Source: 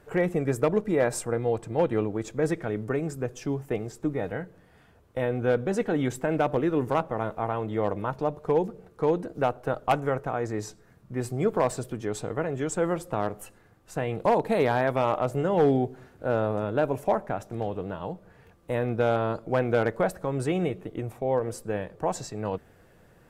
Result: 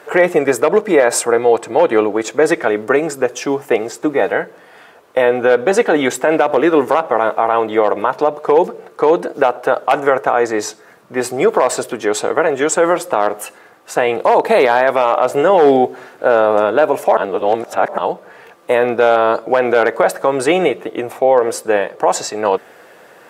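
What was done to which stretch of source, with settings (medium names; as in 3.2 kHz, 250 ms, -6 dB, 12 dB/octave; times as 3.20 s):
17.17–17.98 s: reverse
whole clip: high-pass 490 Hz 12 dB/octave; treble shelf 5.6 kHz -5 dB; loudness maximiser +20.5 dB; trim -1 dB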